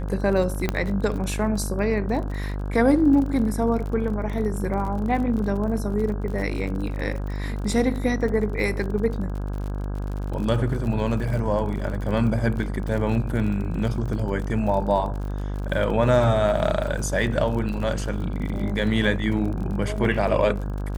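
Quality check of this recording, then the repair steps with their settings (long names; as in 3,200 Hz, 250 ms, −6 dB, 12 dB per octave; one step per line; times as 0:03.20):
mains buzz 50 Hz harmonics 33 −28 dBFS
surface crackle 44 per second −31 dBFS
0:00.69: click −9 dBFS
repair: click removal
hum removal 50 Hz, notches 33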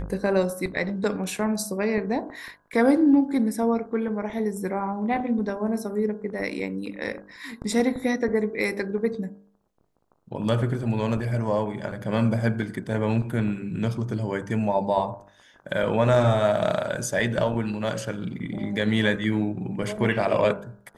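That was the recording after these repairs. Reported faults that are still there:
none of them is left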